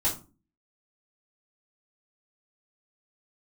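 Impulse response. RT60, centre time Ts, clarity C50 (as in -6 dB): 0.35 s, 22 ms, 9.5 dB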